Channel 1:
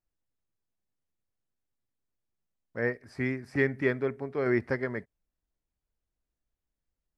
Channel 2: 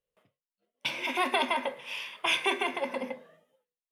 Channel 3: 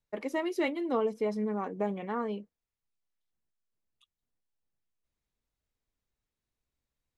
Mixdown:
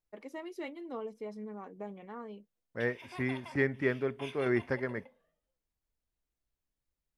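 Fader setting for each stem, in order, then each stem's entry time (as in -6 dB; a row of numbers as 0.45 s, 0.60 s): -3.0 dB, -19.5 dB, -11.0 dB; 0.00 s, 1.95 s, 0.00 s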